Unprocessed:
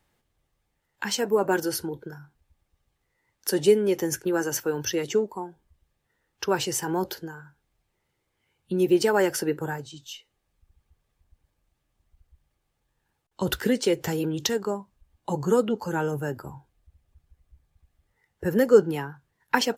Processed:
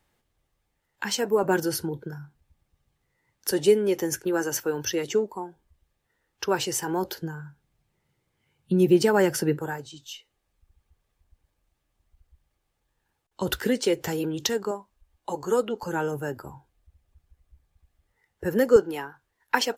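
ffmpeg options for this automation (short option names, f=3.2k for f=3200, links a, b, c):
-af "asetnsamples=n=441:p=0,asendcmd='1.43 equalizer g 5.5;3.51 equalizer g -2.5;7.22 equalizer g 8.5;9.58 equalizer g -3.5;14.71 equalizer g -14.5;15.83 equalizer g -4;18.76 equalizer g -14',equalizer=f=150:t=o:w=1.2:g=-1.5"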